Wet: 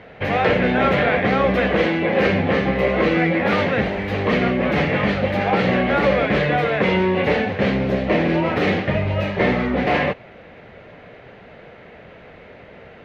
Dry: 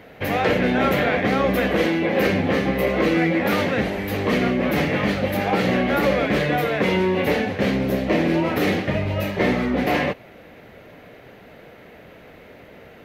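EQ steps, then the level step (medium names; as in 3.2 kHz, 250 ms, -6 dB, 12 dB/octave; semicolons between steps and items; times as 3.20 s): low-pass 3.6 kHz 12 dB/octave; peaking EQ 290 Hz -5 dB 0.6 oct; +3.0 dB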